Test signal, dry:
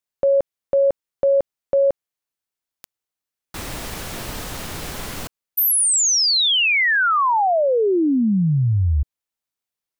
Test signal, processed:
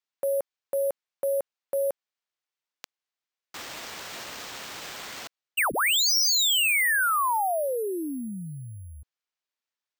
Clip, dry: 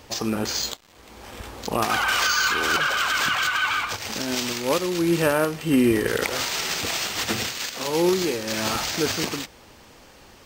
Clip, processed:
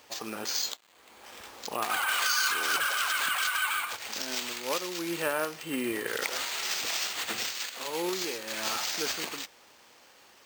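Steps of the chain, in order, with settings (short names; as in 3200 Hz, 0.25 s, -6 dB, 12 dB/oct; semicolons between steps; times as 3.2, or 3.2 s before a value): careless resampling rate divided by 4×, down none, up hold; HPF 780 Hz 6 dB/oct; gain -5 dB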